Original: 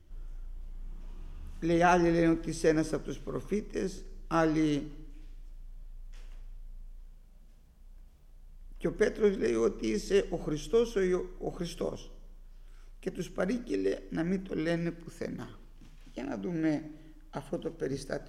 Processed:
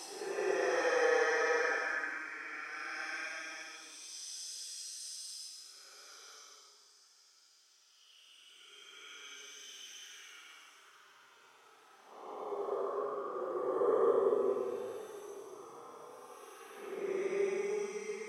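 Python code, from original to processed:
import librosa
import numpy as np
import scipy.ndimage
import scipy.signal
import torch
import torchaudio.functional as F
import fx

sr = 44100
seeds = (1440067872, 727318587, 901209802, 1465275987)

y = fx.filter_lfo_highpass(x, sr, shape='sine', hz=1.1, low_hz=470.0, high_hz=4300.0, q=2.0)
y = fx.paulstretch(y, sr, seeds[0], factor=19.0, window_s=0.05, from_s=2.62)
y = fx.graphic_eq_31(y, sr, hz=(400, 800, 1250), db=(7, 10, 7))
y = y * 10.0 ** (-3.0 / 20.0)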